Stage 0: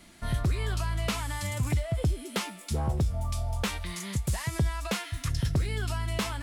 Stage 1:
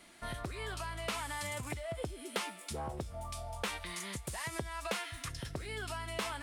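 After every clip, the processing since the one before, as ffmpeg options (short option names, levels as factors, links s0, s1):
-af "equalizer=f=9000:w=7.1:g=6.5,acompressor=threshold=0.0447:ratio=6,bass=f=250:g=-12,treble=f=4000:g=-4,volume=0.841"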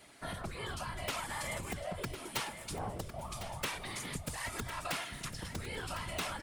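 -af "aeval=exprs='(mod(17.8*val(0)+1,2)-1)/17.8':c=same,afftfilt=real='hypot(re,im)*cos(2*PI*random(0))':imag='hypot(re,im)*sin(2*PI*random(1))':win_size=512:overlap=0.75,aecho=1:1:1054|2108|3162:0.266|0.0612|0.0141,volume=2"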